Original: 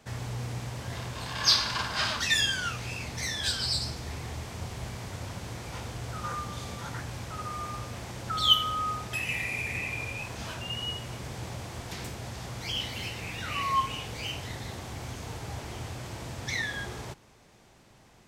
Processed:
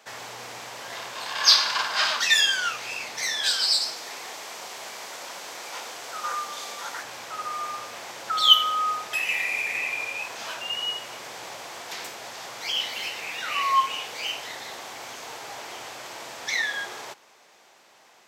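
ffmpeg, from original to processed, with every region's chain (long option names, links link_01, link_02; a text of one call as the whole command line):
ffmpeg -i in.wav -filter_complex "[0:a]asettb=1/sr,asplit=3[link_01][link_02][link_03];[link_01]atrim=end=3.514[link_04];[link_02]atrim=start=3.51:end=7.03,asetpts=PTS-STARTPTS,afade=type=in:duration=0.004:curve=qsin,afade=type=out:start_time=3.516:duration=0.004:curve=qsin,highpass=140,bass=frequency=250:gain=-4,treble=frequency=4000:gain=3[link_05];[link_03]atrim=start=7.026[link_06];[link_04][link_05]acrossfade=duration=0.004:curve1=hsin:curve2=qsin[link_07];[link_07][link_06]acrossfade=duration=0.004:curve1=qsin:curve2=hsin,highpass=590,equalizer=frequency=9400:width=3.6:gain=-6.5,volume=6dB" out.wav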